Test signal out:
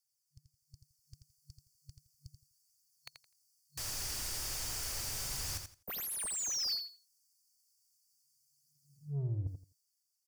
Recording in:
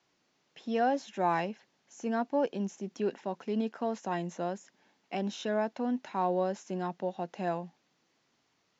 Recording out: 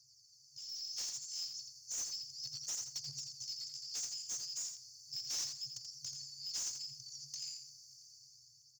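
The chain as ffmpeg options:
ffmpeg -i in.wav -filter_complex "[0:a]afftfilt=real='re*(1-between(b*sr/4096,140,4400))':imag='im*(1-between(b*sr/4096,140,4400))':win_size=4096:overlap=0.75,highshelf=frequency=3300:gain=2.5,aphaser=in_gain=1:out_gain=1:delay=3.1:decay=0.38:speed=0.34:type=triangular,areverse,acompressor=threshold=-39dB:ratio=20,areverse,aeval=exprs='(mod(42.2*val(0)+1,2)-1)/42.2':channel_layout=same,asplit=2[link_01][link_02];[link_02]highpass=frequency=720:poles=1,volume=27dB,asoftclip=type=tanh:threshold=-33dB[link_03];[link_01][link_03]amix=inputs=2:normalize=0,lowpass=frequency=4000:poles=1,volume=-6dB,dynaudnorm=framelen=160:gausssize=11:maxgain=9dB,aecho=1:1:84|168|252:0.447|0.0893|0.0179,volume=-4dB" out.wav

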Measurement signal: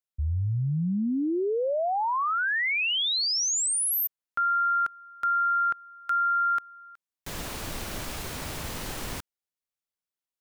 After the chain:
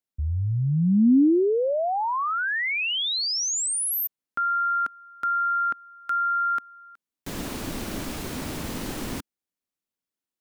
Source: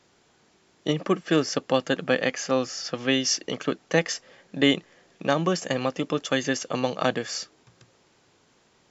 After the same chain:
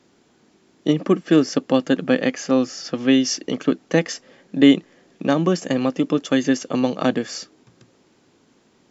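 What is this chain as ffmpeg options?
ffmpeg -i in.wav -af "equalizer=frequency=260:width=1.1:gain=10.5" out.wav

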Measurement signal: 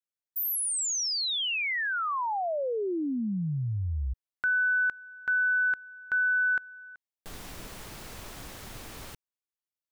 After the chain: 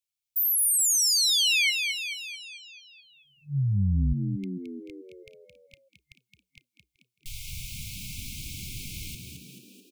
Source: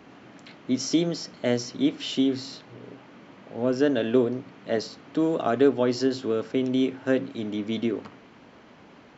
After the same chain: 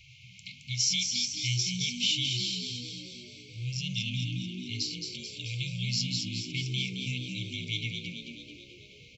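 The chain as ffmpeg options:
ffmpeg -i in.wav -filter_complex "[0:a]afftfilt=real='re*(1-between(b*sr/4096,140,2100))':imag='im*(1-between(b*sr/4096,140,2100))':win_size=4096:overlap=0.75,asplit=9[link_01][link_02][link_03][link_04][link_05][link_06][link_07][link_08][link_09];[link_02]adelay=218,afreqshift=60,volume=-5.5dB[link_10];[link_03]adelay=436,afreqshift=120,volume=-10.4dB[link_11];[link_04]adelay=654,afreqshift=180,volume=-15.3dB[link_12];[link_05]adelay=872,afreqshift=240,volume=-20.1dB[link_13];[link_06]adelay=1090,afreqshift=300,volume=-25dB[link_14];[link_07]adelay=1308,afreqshift=360,volume=-29.9dB[link_15];[link_08]adelay=1526,afreqshift=420,volume=-34.8dB[link_16];[link_09]adelay=1744,afreqshift=480,volume=-39.7dB[link_17];[link_01][link_10][link_11][link_12][link_13][link_14][link_15][link_16][link_17]amix=inputs=9:normalize=0,volume=5.5dB" out.wav

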